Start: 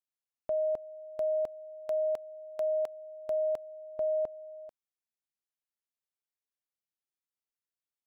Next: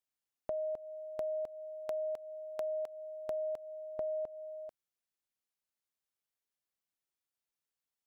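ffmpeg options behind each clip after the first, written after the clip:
-af "acompressor=threshold=-36dB:ratio=6,volume=1dB"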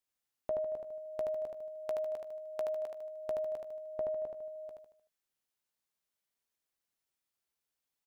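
-filter_complex "[0:a]asplit=2[a][b];[b]adelay=16,volume=-12.5dB[c];[a][c]amix=inputs=2:normalize=0,asplit=2[d][e];[e]aecho=0:1:76|152|228|304|380:0.631|0.271|0.117|0.0502|0.0216[f];[d][f]amix=inputs=2:normalize=0,volume=1dB"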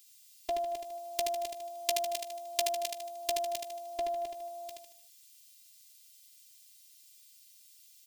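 -af "aexciter=amount=13:drive=7.8:freq=2.2k,afftfilt=real='hypot(re,im)*cos(PI*b)':imag='0':win_size=512:overlap=0.75,volume=4.5dB"

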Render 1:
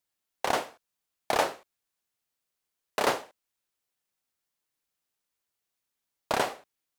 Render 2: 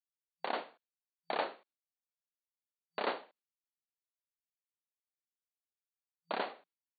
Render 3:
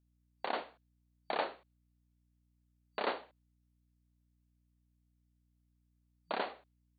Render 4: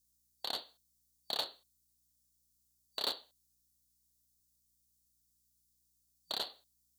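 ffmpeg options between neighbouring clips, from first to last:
-af "agate=range=-33dB:threshold=-54dB:ratio=3:detection=peak,afftfilt=real='re*between(b*sr/4096,170,4600)':imag='im*between(b*sr/4096,170,4600)':win_size=4096:overlap=0.75,volume=-9dB"
-af "aeval=exprs='val(0)+0.000224*(sin(2*PI*60*n/s)+sin(2*PI*2*60*n/s)/2+sin(2*PI*3*60*n/s)/3+sin(2*PI*4*60*n/s)/4+sin(2*PI*5*60*n/s)/5)':c=same"
-af "aexciter=amount=12:drive=9.3:freq=3.7k,aeval=exprs='0.133*(cos(1*acos(clip(val(0)/0.133,-1,1)))-cos(1*PI/2))+0.0237*(cos(3*acos(clip(val(0)/0.133,-1,1)))-cos(3*PI/2))':c=same,volume=-6.5dB"

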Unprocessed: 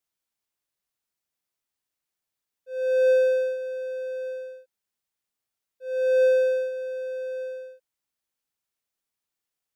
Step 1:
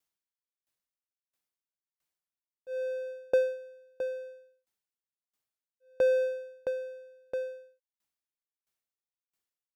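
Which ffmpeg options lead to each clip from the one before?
-af "aeval=exprs='val(0)*pow(10,-37*if(lt(mod(1.5*n/s,1),2*abs(1.5)/1000),1-mod(1.5*n/s,1)/(2*abs(1.5)/1000),(mod(1.5*n/s,1)-2*abs(1.5)/1000)/(1-2*abs(1.5)/1000))/20)':c=same,volume=2.5dB"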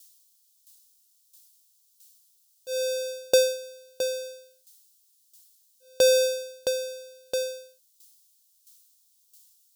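-af "aexciter=amount=15.3:drive=4.8:freq=3.2k,volume=5dB"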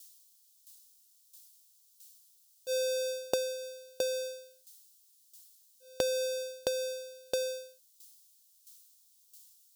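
-af "acompressor=threshold=-27dB:ratio=16"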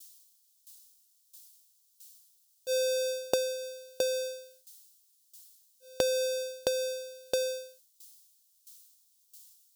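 -af "agate=range=-33dB:threshold=-59dB:ratio=3:detection=peak,volume=2.5dB"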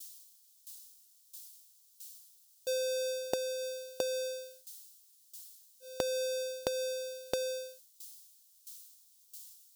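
-af "acompressor=threshold=-37dB:ratio=3,volume=4dB"

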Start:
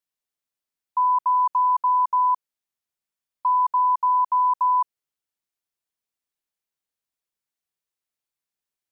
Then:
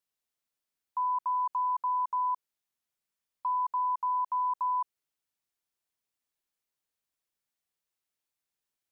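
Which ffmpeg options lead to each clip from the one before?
-af "alimiter=level_in=1.5dB:limit=-24dB:level=0:latency=1:release=32,volume=-1.5dB"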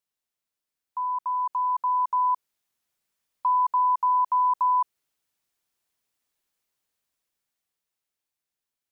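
-af "dynaudnorm=f=270:g=13:m=7.5dB"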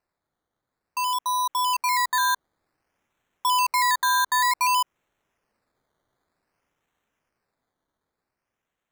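-filter_complex "[0:a]asplit=2[a][b];[b]alimiter=level_in=1.5dB:limit=-24dB:level=0:latency=1:release=128,volume=-1.5dB,volume=-0.5dB[c];[a][c]amix=inputs=2:normalize=0,acrusher=samples=13:mix=1:aa=0.000001:lfo=1:lforange=7.8:lforate=0.54,volume=-2.5dB"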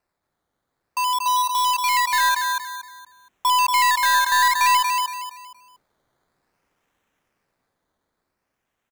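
-filter_complex "[0:a]aecho=1:1:234|468|702|936:0.596|0.191|0.061|0.0195,acrossover=split=2600|3400[a][b][c];[c]aeval=exprs='clip(val(0),-1,0.0224)':c=same[d];[a][b][d]amix=inputs=3:normalize=0,volume=3.5dB"

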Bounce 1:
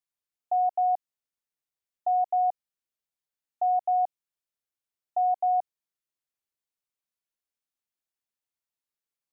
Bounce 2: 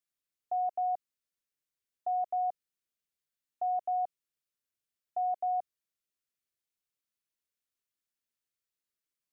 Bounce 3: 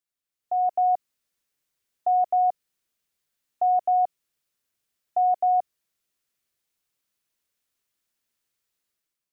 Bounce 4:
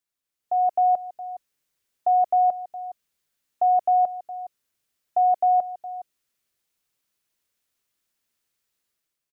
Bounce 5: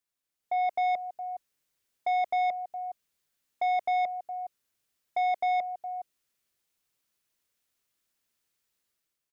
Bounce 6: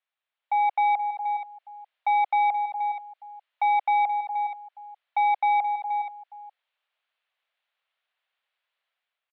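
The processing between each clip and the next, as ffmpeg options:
-af "equalizer=f=830:t=o:w=0.61:g=-9.5"
-af "dynaudnorm=f=150:g=7:m=10dB"
-filter_complex "[0:a]asplit=2[a][b];[b]adelay=414,volume=-15dB,highshelf=f=4k:g=-9.32[c];[a][c]amix=inputs=2:normalize=0,volume=2dB"
-af "asoftclip=type=tanh:threshold=-22.5dB,volume=-1.5dB"
-filter_complex "[0:a]asplit=2[a][b];[b]aecho=0:1:477:0.251[c];[a][c]amix=inputs=2:normalize=0,highpass=f=510:t=q:w=0.5412,highpass=f=510:t=q:w=1.307,lowpass=f=3.5k:t=q:w=0.5176,lowpass=f=3.5k:t=q:w=0.7071,lowpass=f=3.5k:t=q:w=1.932,afreqshift=98,volume=5dB"

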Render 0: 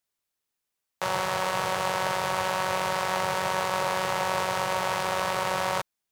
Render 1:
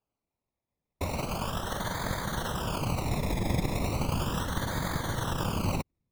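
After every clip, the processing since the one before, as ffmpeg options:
-af "acrusher=samples=23:mix=1:aa=0.000001:lfo=1:lforange=13.8:lforate=0.36,afftfilt=real='hypot(re,im)*cos(2*PI*random(0))':imag='hypot(re,im)*sin(2*PI*random(1))':win_size=512:overlap=0.75,asubboost=boost=6.5:cutoff=220"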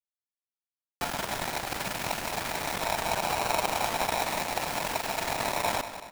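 -filter_complex "[0:a]aeval=exprs='val(0)*gte(abs(val(0)),0.0224)':c=same,asplit=2[a][b];[b]adelay=189,lowpass=f=4.7k:p=1,volume=-11.5dB,asplit=2[c][d];[d]adelay=189,lowpass=f=4.7k:p=1,volume=0.52,asplit=2[e][f];[f]adelay=189,lowpass=f=4.7k:p=1,volume=0.52,asplit=2[g][h];[h]adelay=189,lowpass=f=4.7k:p=1,volume=0.52,asplit=2[i][j];[j]adelay=189,lowpass=f=4.7k:p=1,volume=0.52,asplit=2[k][l];[l]adelay=189,lowpass=f=4.7k:p=1,volume=0.52[m];[a][c][e][g][i][k][m]amix=inputs=7:normalize=0,aeval=exprs='val(0)*sgn(sin(2*PI*790*n/s))':c=same"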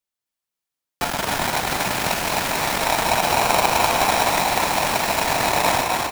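-filter_complex "[0:a]asplit=8[a][b][c][d][e][f][g][h];[b]adelay=256,afreqshift=43,volume=-3dB[i];[c]adelay=512,afreqshift=86,volume=-8.7dB[j];[d]adelay=768,afreqshift=129,volume=-14.4dB[k];[e]adelay=1024,afreqshift=172,volume=-20dB[l];[f]adelay=1280,afreqshift=215,volume=-25.7dB[m];[g]adelay=1536,afreqshift=258,volume=-31.4dB[n];[h]adelay=1792,afreqshift=301,volume=-37.1dB[o];[a][i][j][k][l][m][n][o]amix=inputs=8:normalize=0,volume=8dB"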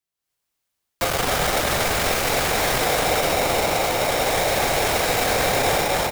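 -af "dynaudnorm=f=160:g=3:m=8dB,asoftclip=type=tanh:threshold=-15dB,afreqshift=-180,volume=-1dB"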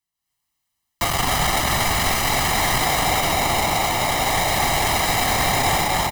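-af "aecho=1:1:1:0.68"

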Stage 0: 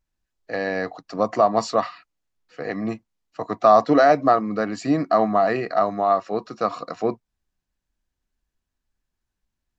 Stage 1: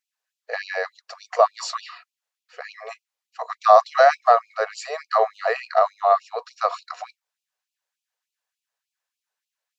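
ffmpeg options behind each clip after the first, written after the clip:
-af "afftfilt=real='re*gte(b*sr/1024,410*pow(2400/410,0.5+0.5*sin(2*PI*3.4*pts/sr)))':imag='im*gte(b*sr/1024,410*pow(2400/410,0.5+0.5*sin(2*PI*3.4*pts/sr)))':win_size=1024:overlap=0.75,volume=2.5dB"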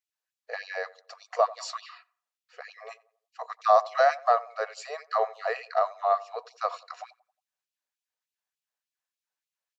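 -filter_complex "[0:a]asplit=2[a][b];[b]adelay=90,lowpass=f=1.2k:p=1,volume=-18.5dB,asplit=2[c][d];[d]adelay=90,lowpass=f=1.2k:p=1,volume=0.45,asplit=2[e][f];[f]adelay=90,lowpass=f=1.2k:p=1,volume=0.45,asplit=2[g][h];[h]adelay=90,lowpass=f=1.2k:p=1,volume=0.45[i];[a][c][e][g][i]amix=inputs=5:normalize=0,volume=-7dB"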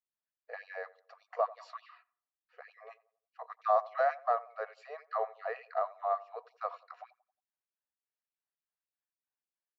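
-af "lowpass=2.2k,volume=-7.5dB"

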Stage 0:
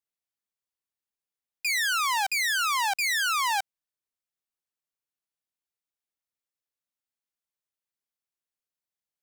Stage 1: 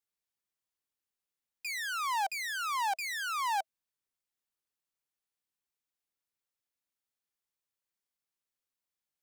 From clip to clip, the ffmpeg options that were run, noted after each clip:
-filter_complex "[0:a]acrossover=split=930[a][b];[b]alimiter=level_in=4dB:limit=-24dB:level=0:latency=1,volume=-4dB[c];[a][c]amix=inputs=2:normalize=0,bandreject=f=650:w=12"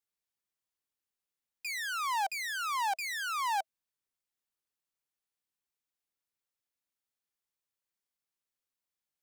-af anull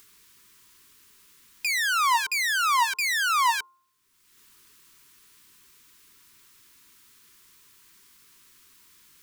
-filter_complex "[0:a]afftfilt=real='re*(1-between(b*sr/4096,450,910))':imag='im*(1-between(b*sr/4096,450,910))':win_size=4096:overlap=0.75,bandreject=f=351.8:t=h:w=4,bandreject=f=703.6:t=h:w=4,bandreject=f=1.0554k:t=h:w=4,bandreject=f=1.4072k:t=h:w=4,asplit=2[a][b];[b]acompressor=mode=upward:threshold=-36dB:ratio=2.5,volume=-3dB[c];[a][c]amix=inputs=2:normalize=0,volume=6.5dB"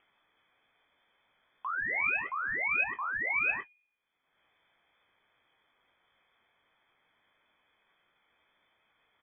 -filter_complex "[0:a]flanger=delay=8.3:depth=8:regen=50:speed=1.9:shape=sinusoidal,asplit=2[a][b];[b]adelay=21,volume=-9dB[c];[a][c]amix=inputs=2:normalize=0,lowpass=f=3k:t=q:w=0.5098,lowpass=f=3k:t=q:w=0.6013,lowpass=f=3k:t=q:w=0.9,lowpass=f=3k:t=q:w=2.563,afreqshift=-3500,volume=-3.5dB"

